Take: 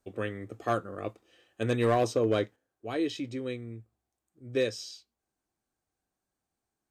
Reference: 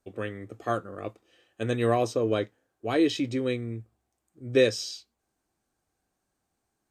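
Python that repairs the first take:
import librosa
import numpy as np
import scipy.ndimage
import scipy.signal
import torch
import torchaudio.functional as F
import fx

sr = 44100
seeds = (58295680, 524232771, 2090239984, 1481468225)

y = fx.fix_declip(x, sr, threshold_db=-18.0)
y = fx.gain(y, sr, db=fx.steps((0.0, 0.0), (2.56, 7.0)))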